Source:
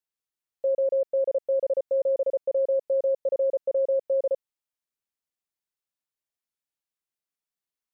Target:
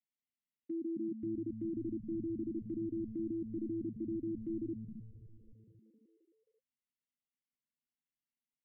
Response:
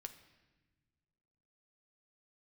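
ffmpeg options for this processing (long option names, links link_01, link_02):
-filter_complex "[0:a]agate=range=-7dB:threshold=-35dB:ratio=16:detection=peak,equalizer=frequency=220:width=1.2:gain=12,acrossover=split=350|760[link_01][link_02][link_03];[link_01]acompressor=threshold=-38dB:ratio=4[link_04];[link_02]acompressor=threshold=-24dB:ratio=4[link_05];[link_03]acompressor=threshold=-40dB:ratio=4[link_06];[link_04][link_05][link_06]amix=inputs=3:normalize=0,asetrate=29433,aresample=44100,atempo=1.49831,alimiter=level_in=5dB:limit=-24dB:level=0:latency=1,volume=-5dB,asplit=3[link_07][link_08][link_09];[link_07]bandpass=frequency=270:width_type=q:width=8,volume=0dB[link_10];[link_08]bandpass=frequency=2290:width_type=q:width=8,volume=-6dB[link_11];[link_09]bandpass=frequency=3010:width_type=q:width=8,volume=-9dB[link_12];[link_10][link_11][link_12]amix=inputs=3:normalize=0,asplit=8[link_13][link_14][link_15][link_16][link_17][link_18][link_19][link_20];[link_14]adelay=243,afreqshift=-120,volume=-8.5dB[link_21];[link_15]adelay=486,afreqshift=-240,volume=-13.7dB[link_22];[link_16]adelay=729,afreqshift=-360,volume=-18.9dB[link_23];[link_17]adelay=972,afreqshift=-480,volume=-24.1dB[link_24];[link_18]adelay=1215,afreqshift=-600,volume=-29.3dB[link_25];[link_19]adelay=1458,afreqshift=-720,volume=-34.5dB[link_26];[link_20]adelay=1701,afreqshift=-840,volume=-39.7dB[link_27];[link_13][link_21][link_22][link_23][link_24][link_25][link_26][link_27]amix=inputs=8:normalize=0,asetrate=40517,aresample=44100,volume=9dB"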